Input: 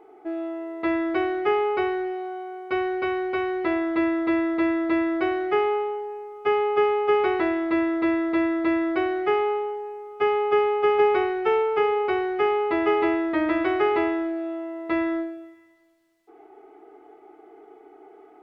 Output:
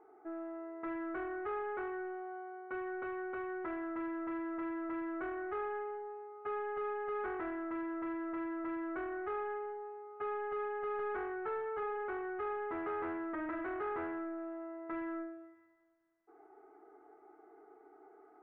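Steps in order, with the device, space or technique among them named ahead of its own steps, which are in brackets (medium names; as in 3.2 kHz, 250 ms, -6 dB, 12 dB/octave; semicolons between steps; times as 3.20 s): overdriven synthesiser ladder filter (saturation -25 dBFS, distortion -10 dB; four-pole ladder low-pass 1.8 kHz, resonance 45%); trim -3 dB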